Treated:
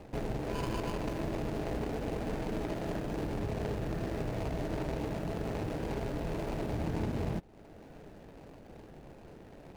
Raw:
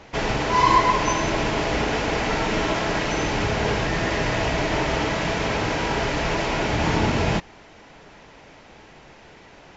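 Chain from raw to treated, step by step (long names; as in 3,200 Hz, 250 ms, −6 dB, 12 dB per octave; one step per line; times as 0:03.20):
running median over 41 samples
downward compressor 2 to 1, threshold −39 dBFS, peak gain reduction 11.5 dB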